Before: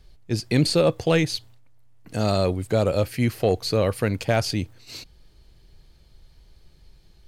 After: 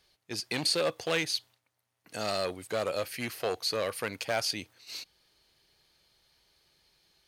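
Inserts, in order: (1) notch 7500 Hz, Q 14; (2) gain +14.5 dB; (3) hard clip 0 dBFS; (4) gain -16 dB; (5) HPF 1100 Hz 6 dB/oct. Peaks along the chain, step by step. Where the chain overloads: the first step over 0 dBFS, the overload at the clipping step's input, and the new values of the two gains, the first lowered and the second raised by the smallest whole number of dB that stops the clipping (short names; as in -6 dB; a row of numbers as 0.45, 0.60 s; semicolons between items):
-9.0, +5.5, 0.0, -16.0, -13.5 dBFS; step 2, 5.5 dB; step 2 +8.5 dB, step 4 -10 dB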